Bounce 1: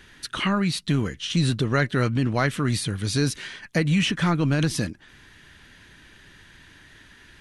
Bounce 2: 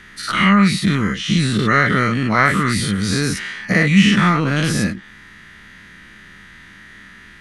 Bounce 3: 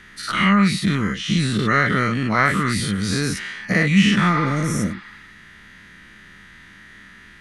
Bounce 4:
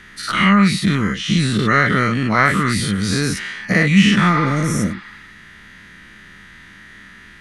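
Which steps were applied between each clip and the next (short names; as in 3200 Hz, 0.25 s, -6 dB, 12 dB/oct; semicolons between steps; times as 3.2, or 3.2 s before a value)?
spectral dilation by 0.12 s; thirty-one-band EQ 200 Hz +11 dB, 1250 Hz +9 dB, 2000 Hz +10 dB; gain -1 dB
spectral repair 4.36–5.32, 740–5300 Hz both; gain -3 dB
de-esser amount 40%; gain +3 dB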